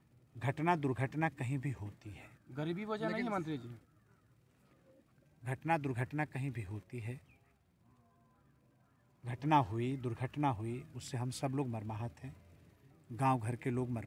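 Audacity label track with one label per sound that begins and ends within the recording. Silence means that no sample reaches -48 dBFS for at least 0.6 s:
5.440000	7.180000	sound
9.240000	12.330000	sound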